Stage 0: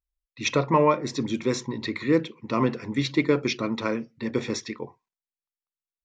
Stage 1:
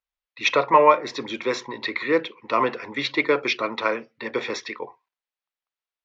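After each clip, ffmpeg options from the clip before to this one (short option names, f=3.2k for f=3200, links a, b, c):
-filter_complex "[0:a]acrossover=split=450 4500:gain=0.0891 1 0.0708[a][b][c];[a][b][c]amix=inputs=3:normalize=0,volume=7.5dB"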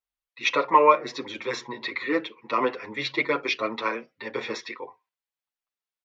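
-filter_complex "[0:a]asplit=2[a][b];[b]adelay=7.2,afreqshift=1.4[c];[a][c]amix=inputs=2:normalize=1"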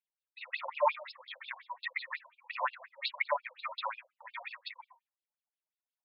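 -af "aphaser=in_gain=1:out_gain=1:delay=3.3:decay=0.6:speed=1.5:type=sinusoidal,afftfilt=real='re*between(b*sr/1024,690*pow(3800/690,0.5+0.5*sin(2*PI*5.6*pts/sr))/1.41,690*pow(3800/690,0.5+0.5*sin(2*PI*5.6*pts/sr))*1.41)':imag='im*between(b*sr/1024,690*pow(3800/690,0.5+0.5*sin(2*PI*5.6*pts/sr))/1.41,690*pow(3800/690,0.5+0.5*sin(2*PI*5.6*pts/sr))*1.41)':win_size=1024:overlap=0.75,volume=-4.5dB"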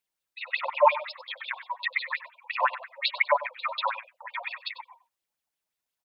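-af "aecho=1:1:96:0.168,volume=8.5dB"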